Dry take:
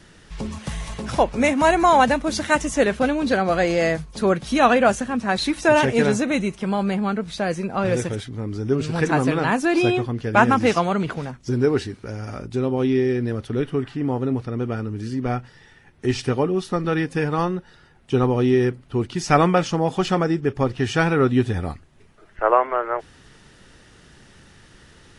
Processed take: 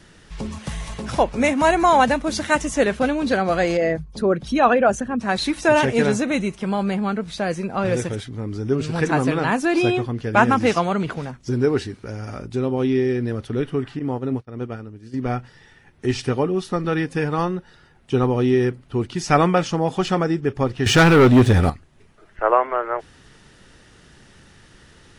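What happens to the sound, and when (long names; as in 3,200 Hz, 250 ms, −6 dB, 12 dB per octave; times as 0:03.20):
0:03.77–0:05.21: spectral envelope exaggerated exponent 1.5
0:13.99–0:15.14: downward expander −21 dBFS
0:20.86–0:21.70: leveller curve on the samples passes 3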